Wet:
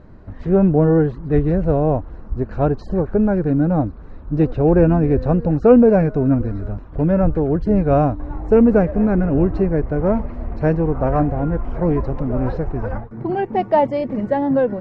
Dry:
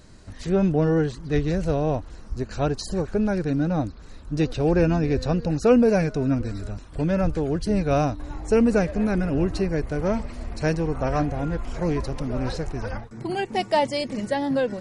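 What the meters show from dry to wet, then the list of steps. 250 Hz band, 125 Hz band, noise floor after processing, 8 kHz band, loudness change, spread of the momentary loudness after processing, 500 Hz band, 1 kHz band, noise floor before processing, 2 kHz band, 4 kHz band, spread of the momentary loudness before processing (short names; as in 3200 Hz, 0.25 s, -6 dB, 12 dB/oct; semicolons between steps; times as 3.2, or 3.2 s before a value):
+6.5 dB, +6.5 dB, -36 dBFS, under -20 dB, +6.5 dB, 11 LU, +6.5 dB, +5.5 dB, -42 dBFS, -0.5 dB, under -10 dB, 11 LU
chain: LPF 1200 Hz 12 dB/oct; gain +6.5 dB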